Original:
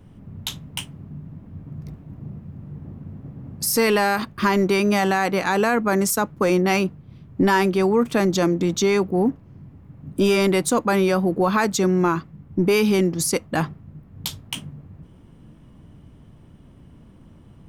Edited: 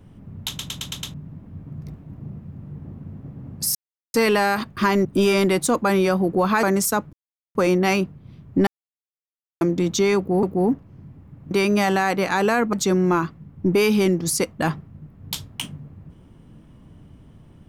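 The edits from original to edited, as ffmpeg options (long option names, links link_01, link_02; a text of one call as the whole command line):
ffmpeg -i in.wav -filter_complex "[0:a]asplit=16[link_01][link_02][link_03][link_04][link_05][link_06][link_07][link_08][link_09][link_10][link_11][link_12][link_13][link_14][link_15][link_16];[link_01]atrim=end=0.592[link_17];[link_02]atrim=start=0.478:end=0.592[link_18];[link_03]atrim=start=0.478:end=0.592[link_19];[link_04]atrim=start=0.478:end=0.592[link_20];[link_05]atrim=start=0.478:end=0.592[link_21];[link_06]atrim=start=0.478:end=0.592[link_22];[link_07]atrim=start=1.138:end=3.75,asetpts=PTS-STARTPTS,afade=type=out:start_time=2.608:duration=0.004:curve=hsin,apad=pad_dur=0.39[link_23];[link_08]atrim=start=3.75:end=4.662,asetpts=PTS-STARTPTS,afade=type=in:duration=0.004:curve=hsin[link_24];[link_09]atrim=start=10.078:end=11.662[link_25];[link_10]atrim=start=5.878:end=6.38,asetpts=PTS-STARTPTS,afade=type=out:start_time=0.498:duration=0.004:curve=hsin,apad=pad_dur=0.42[link_26];[link_11]atrim=start=6.38:end=7.5,asetpts=PTS-STARTPTS,afade=type=in:duration=0.004:curve=hsin,afade=type=out:start_time=1.116:duration=0.004:curve=hsin[link_27];[link_12]atrim=start=7.5:end=8.44,asetpts=PTS-STARTPTS,volume=0[link_28];[link_13]atrim=start=8.44:end=9.262,asetpts=PTS-STARTPTS,afade=type=in:duration=0.004:curve=hsin[link_29];[link_14]atrim=start=8.998:end=10.082[link_30];[link_15]atrim=start=4.658:end=5.882[link_31];[link_16]atrim=start=11.658[link_32];[link_17][link_18]acrossfade=duration=0.004:curve1=hsin:curve2=hsin[link_33];[link_33][link_19]acrossfade=duration=0.004:curve1=hsin:curve2=hsin[link_34];[link_34][link_20]acrossfade=duration=0.004:curve1=hsin:curve2=hsin[link_35];[link_35][link_21]acrossfade=duration=0.004:curve1=hsin:curve2=hsin[link_36];[link_36][link_22]acrossfade=duration=0.004:curve1=hsin:curve2=hsin[link_37];[link_23][link_24]concat=n=2:v=0:a=1[link_38];[link_37][link_38]acrossfade=duration=0.004:curve1=hsin:curve2=hsin[link_39];[link_39][link_25]acrossfade=duration=0.004:curve1=hsin:curve2=hsin[link_40];[link_26][link_27][link_28][link_29]concat=n=4:v=0:a=1[link_41];[link_40][link_41]acrossfade=duration=0.004:curve1=hsin:curve2=hsin[link_42];[link_42][link_30]acrossfade=duration=0.004:curve1=hsin:curve2=hsin[link_43];[link_43][link_31]acrossfade=duration=0.004:curve1=hsin:curve2=hsin[link_44];[link_44][link_32]acrossfade=duration=0.004:curve1=hsin:curve2=hsin" out.wav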